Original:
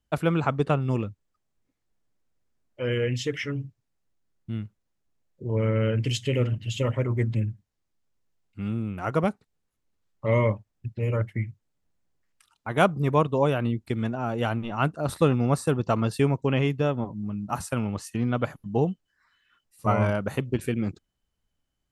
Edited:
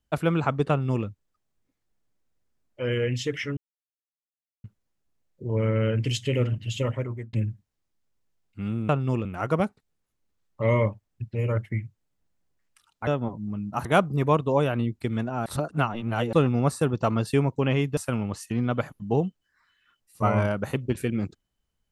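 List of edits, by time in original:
0:00.70–0:01.06: duplicate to 0:08.89
0:03.57–0:04.64: silence
0:06.63–0:07.33: fade out equal-power
0:14.32–0:15.19: reverse
0:16.83–0:17.61: move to 0:12.71

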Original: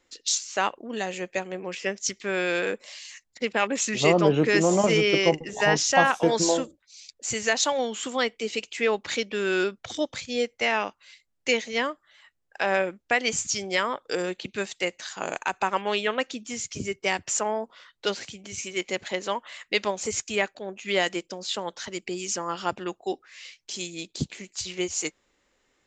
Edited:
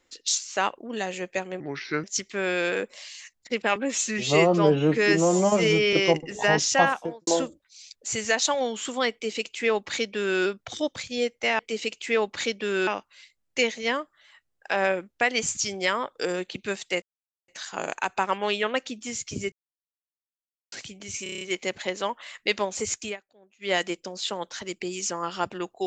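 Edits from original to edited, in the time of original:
0:01.60–0:01.94: play speed 78%
0:03.66–0:05.11: time-stretch 1.5×
0:05.93–0:06.45: fade out and dull
0:08.30–0:09.58: duplicate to 0:10.77
0:14.92: splice in silence 0.46 s
0:16.96–0:18.16: silence
0:18.67: stutter 0.03 s, 7 plays
0:20.29–0:21.00: duck −21.5 dB, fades 0.14 s

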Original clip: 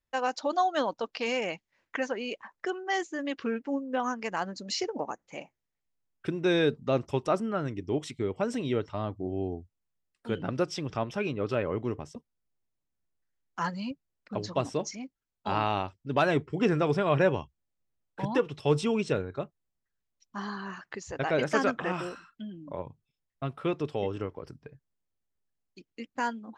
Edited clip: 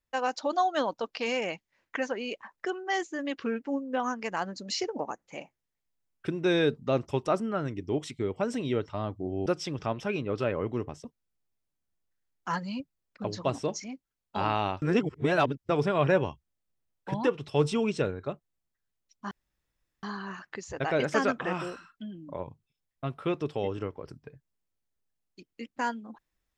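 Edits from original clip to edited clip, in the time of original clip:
0:09.46–0:10.57: remove
0:15.93–0:16.80: reverse
0:20.42: splice in room tone 0.72 s

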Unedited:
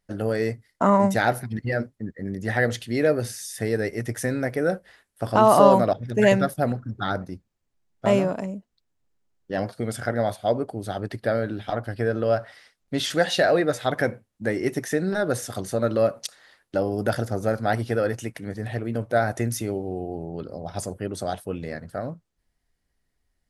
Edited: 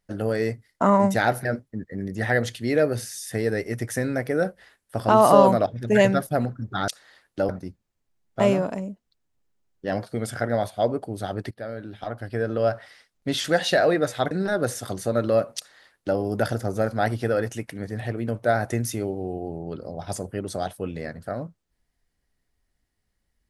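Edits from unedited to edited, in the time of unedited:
0:01.45–0:01.72: remove
0:11.17–0:12.37: fade in, from −14 dB
0:13.97–0:14.98: remove
0:16.24–0:16.85: duplicate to 0:07.15

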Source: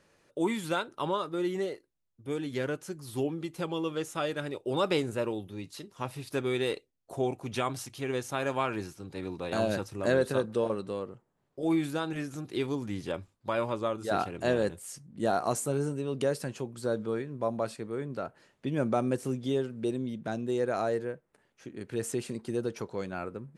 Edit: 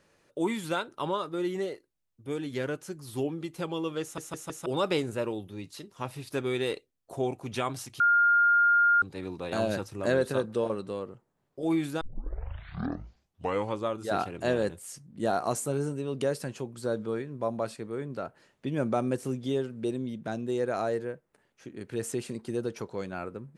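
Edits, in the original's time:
0:04.02: stutter in place 0.16 s, 4 plays
0:08.00–0:09.02: beep over 1,410 Hz −18.5 dBFS
0:12.01: tape start 1.81 s

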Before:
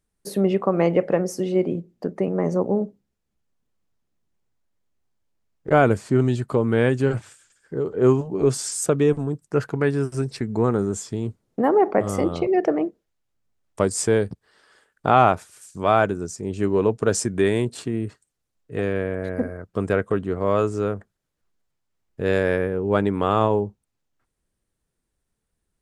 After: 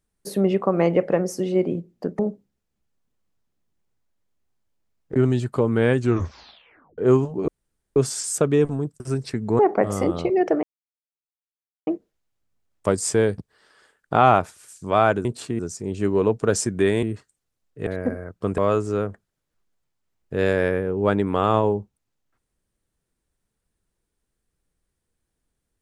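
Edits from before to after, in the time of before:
0:02.19–0:02.74: remove
0:05.71–0:06.12: remove
0:06.94: tape stop 1.00 s
0:08.44: splice in room tone 0.48 s
0:09.48–0:10.07: remove
0:10.66–0:11.76: remove
0:12.80: splice in silence 1.24 s
0:17.62–0:17.96: move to 0:16.18
0:18.80–0:19.20: remove
0:19.91–0:20.45: remove

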